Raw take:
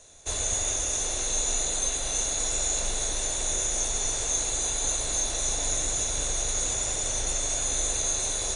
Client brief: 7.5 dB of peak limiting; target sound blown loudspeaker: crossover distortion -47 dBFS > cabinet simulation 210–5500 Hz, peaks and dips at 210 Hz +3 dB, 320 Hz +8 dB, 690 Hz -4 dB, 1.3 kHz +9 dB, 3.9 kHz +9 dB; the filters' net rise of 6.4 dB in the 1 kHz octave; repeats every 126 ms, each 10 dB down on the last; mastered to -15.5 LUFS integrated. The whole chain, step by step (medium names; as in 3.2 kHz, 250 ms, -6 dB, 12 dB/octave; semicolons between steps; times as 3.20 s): peaking EQ 1 kHz +6 dB; peak limiter -21 dBFS; feedback delay 126 ms, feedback 32%, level -10 dB; crossover distortion -47 dBFS; cabinet simulation 210–5500 Hz, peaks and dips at 210 Hz +3 dB, 320 Hz +8 dB, 690 Hz -4 dB, 1.3 kHz +9 dB, 3.9 kHz +9 dB; trim +16 dB